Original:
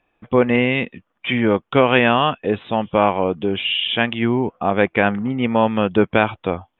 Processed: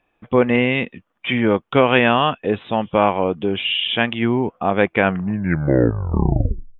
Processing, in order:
turntable brake at the end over 1.81 s

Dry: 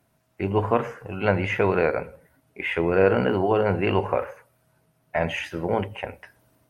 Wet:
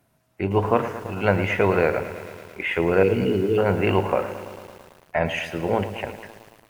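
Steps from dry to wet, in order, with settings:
0:03.03–0:03.58: linear-phase brick-wall band-stop 490–2,100 Hz
feedback echo at a low word length 111 ms, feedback 80%, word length 7 bits, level −13.5 dB
level +1.5 dB

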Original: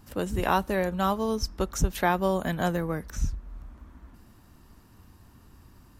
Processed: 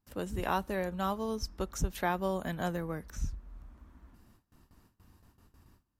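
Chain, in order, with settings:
noise gate with hold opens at −43 dBFS
level −7 dB

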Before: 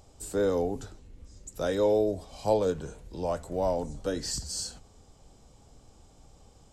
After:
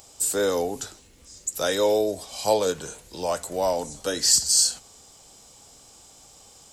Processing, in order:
spectral tilt +3.5 dB per octave
level +6.5 dB

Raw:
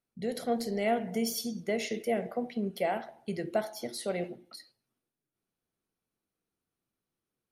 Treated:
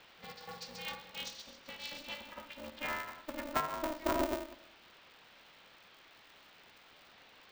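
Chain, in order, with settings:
vocoder with a gliding carrier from D#4, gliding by +9 semitones
low-pass that shuts in the quiet parts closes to 1,300 Hz, open at −29 dBFS
downward expander −47 dBFS
spectral tilt −3.5 dB per octave
mains-hum notches 50/100/150/200/250/300/350/400/450/500 Hz
downward compressor 12 to 1, threshold −39 dBFS, peak gain reduction 17.5 dB
delay with a high-pass on its return 136 ms, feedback 35%, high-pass 3,700 Hz, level −4.5 dB
formants moved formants +3 semitones
band-pass filter sweep 4,200 Hz → 440 Hz, 0:02.02–0:04.70
convolution reverb RT60 0.75 s, pre-delay 3 ms, DRR 12.5 dB
noise in a band 280–3,800 Hz −77 dBFS
ring modulator with a square carrier 150 Hz
level +17 dB

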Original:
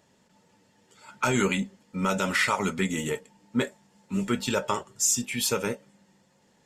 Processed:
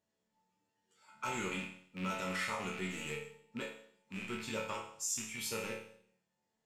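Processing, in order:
loose part that buzzes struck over −38 dBFS, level −19 dBFS
noise reduction from a noise print of the clip's start 8 dB
resonators tuned to a chord D2 major, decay 0.62 s
level +2.5 dB

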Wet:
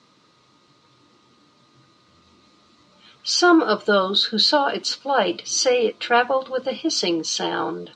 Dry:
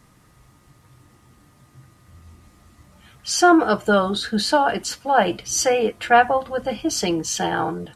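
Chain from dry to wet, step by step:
loudspeaker in its box 280–5,900 Hz, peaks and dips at 750 Hz −9 dB, 1,800 Hz −9 dB, 4,000 Hz +9 dB
level +2 dB

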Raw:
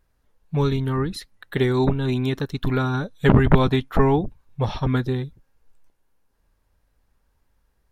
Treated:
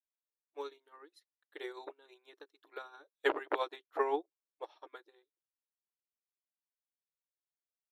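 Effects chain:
linear-phase brick-wall high-pass 300 Hz
notch filter 390 Hz, Q 12
expander for the loud parts 2.5 to 1, over −38 dBFS
level −6.5 dB

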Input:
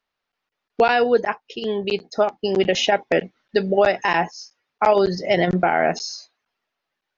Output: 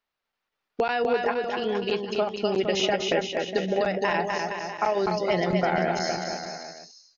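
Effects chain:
downward compressor, threshold −17 dBFS, peak gain reduction 6 dB
on a send: bouncing-ball delay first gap 250 ms, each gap 0.85×, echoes 5
on the sum: level −4 dB

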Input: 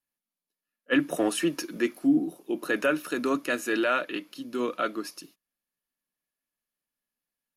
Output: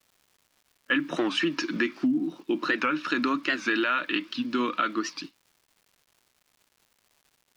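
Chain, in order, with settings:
flat-topped bell 550 Hz −11 dB 1.2 octaves
in parallel at −1.5 dB: brickwall limiter −22 dBFS, peak gain reduction 9 dB
on the sum: low-pass filter 4,800 Hz 24 dB per octave
low-shelf EQ 170 Hz −10 dB
noise gate −46 dBFS, range −12 dB
downward compressor, threshold −29 dBFS, peak gain reduction 11 dB
surface crackle 330 per second −57 dBFS
wow of a warped record 78 rpm, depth 160 cents
level +6.5 dB

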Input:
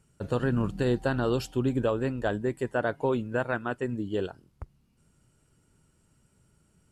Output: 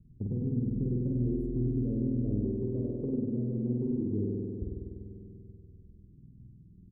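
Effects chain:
low-pass that shuts in the quiet parts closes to 330 Hz, open at −22 dBFS
inverse Chebyshev band-stop filter 1,300–3,400 Hz, stop band 80 dB
tilt shelving filter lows +8.5 dB, about 1,200 Hz
downward compressor, threshold −33 dBFS, peak gain reduction 16.5 dB
single-tap delay 872 ms −20 dB
spring reverb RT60 2.4 s, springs 49 ms, chirp 80 ms, DRR −3 dB

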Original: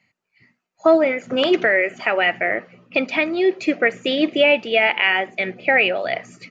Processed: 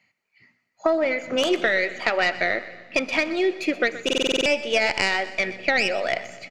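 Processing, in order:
stylus tracing distortion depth 0.092 ms
low-shelf EQ 300 Hz −7.5 dB
downward compressor, threshold −17 dBFS, peak gain reduction 7 dB
on a send: repeating echo 124 ms, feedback 46%, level −15.5 dB
on the sum: four-comb reverb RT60 2.2 s, combs from 27 ms, DRR 19.5 dB
buffer that repeats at 0:04.04, samples 2,048, times 8

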